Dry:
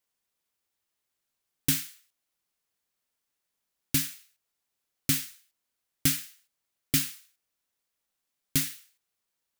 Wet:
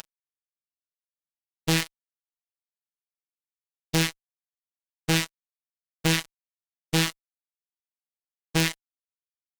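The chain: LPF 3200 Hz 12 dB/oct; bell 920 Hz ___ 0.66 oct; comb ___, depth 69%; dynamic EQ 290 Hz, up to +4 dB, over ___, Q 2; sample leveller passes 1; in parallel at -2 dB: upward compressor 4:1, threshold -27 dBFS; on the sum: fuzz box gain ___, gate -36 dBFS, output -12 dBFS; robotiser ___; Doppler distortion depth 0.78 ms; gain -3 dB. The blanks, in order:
+7 dB, 1 ms, -40 dBFS, 38 dB, 162 Hz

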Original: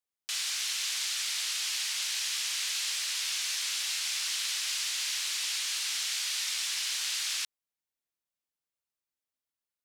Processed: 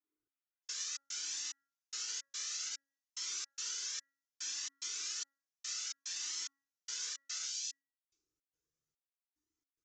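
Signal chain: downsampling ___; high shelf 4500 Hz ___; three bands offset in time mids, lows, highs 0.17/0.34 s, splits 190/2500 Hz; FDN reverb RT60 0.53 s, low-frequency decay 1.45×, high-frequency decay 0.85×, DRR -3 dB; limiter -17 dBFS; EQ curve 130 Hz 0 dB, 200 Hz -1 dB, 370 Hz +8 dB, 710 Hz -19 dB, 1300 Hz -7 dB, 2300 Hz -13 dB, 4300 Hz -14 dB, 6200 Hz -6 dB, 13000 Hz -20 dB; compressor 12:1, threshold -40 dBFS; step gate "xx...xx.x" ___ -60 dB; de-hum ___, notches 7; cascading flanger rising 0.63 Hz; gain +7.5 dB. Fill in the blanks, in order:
16000 Hz, +6 dB, 109 bpm, 276.3 Hz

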